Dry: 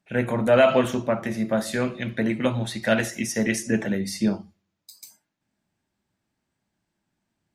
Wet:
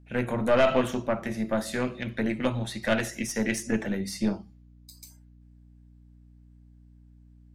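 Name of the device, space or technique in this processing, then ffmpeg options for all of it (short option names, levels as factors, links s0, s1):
valve amplifier with mains hum: -af "aeval=exprs='(tanh(3.98*val(0)+0.6)-tanh(0.6))/3.98':c=same,aeval=exprs='val(0)+0.00282*(sin(2*PI*60*n/s)+sin(2*PI*2*60*n/s)/2+sin(2*PI*3*60*n/s)/3+sin(2*PI*4*60*n/s)/4+sin(2*PI*5*60*n/s)/5)':c=same,volume=0.891"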